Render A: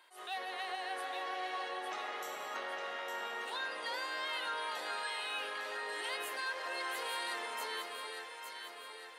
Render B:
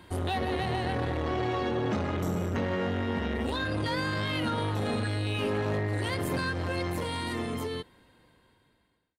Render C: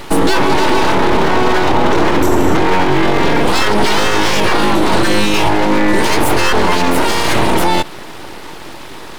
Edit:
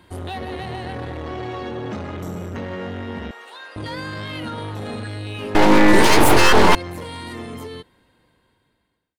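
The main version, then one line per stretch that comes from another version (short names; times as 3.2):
B
3.31–3.76 from A
5.55–6.75 from C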